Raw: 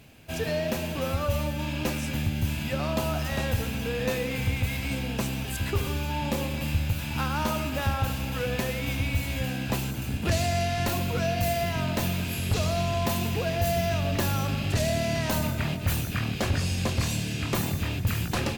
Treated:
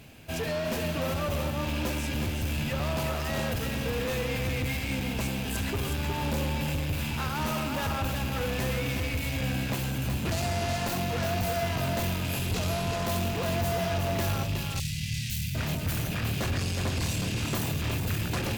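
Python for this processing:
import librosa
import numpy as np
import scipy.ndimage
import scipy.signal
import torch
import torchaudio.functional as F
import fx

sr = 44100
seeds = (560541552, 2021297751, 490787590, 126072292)

y = 10.0 ** (-29.5 / 20.0) * np.tanh(x / 10.0 ** (-29.5 / 20.0))
y = fx.cheby2_bandstop(y, sr, low_hz=390.0, high_hz=1000.0, order=4, stop_db=60, at=(14.43, 15.55))
y = y + 10.0 ** (-5.5 / 20.0) * np.pad(y, (int(366 * sr / 1000.0), 0))[:len(y)]
y = y * 10.0 ** (2.5 / 20.0)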